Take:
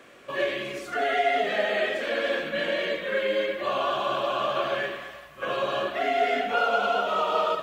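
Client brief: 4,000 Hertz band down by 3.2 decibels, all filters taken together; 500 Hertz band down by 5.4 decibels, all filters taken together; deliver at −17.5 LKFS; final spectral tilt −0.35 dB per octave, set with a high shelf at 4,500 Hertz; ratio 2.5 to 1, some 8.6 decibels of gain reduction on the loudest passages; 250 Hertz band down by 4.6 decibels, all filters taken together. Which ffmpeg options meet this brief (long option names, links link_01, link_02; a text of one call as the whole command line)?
ffmpeg -i in.wav -af "equalizer=frequency=250:width_type=o:gain=-3.5,equalizer=frequency=500:width_type=o:gain=-6.5,equalizer=frequency=4000:width_type=o:gain=-7,highshelf=frequency=4500:gain=5,acompressor=threshold=-36dB:ratio=2.5,volume=18.5dB" out.wav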